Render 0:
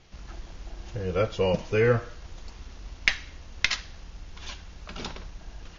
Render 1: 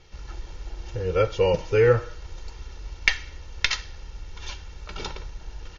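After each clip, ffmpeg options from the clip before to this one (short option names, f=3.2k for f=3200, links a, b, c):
-af "aecho=1:1:2.2:0.57,volume=1dB"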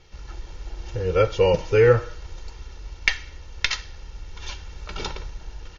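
-af "dynaudnorm=f=240:g=7:m=3.5dB"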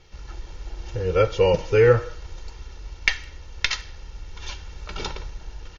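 -filter_complex "[0:a]asplit=2[a][b];[b]adelay=160,highpass=300,lowpass=3.4k,asoftclip=type=hard:threshold=-11dB,volume=-27dB[c];[a][c]amix=inputs=2:normalize=0"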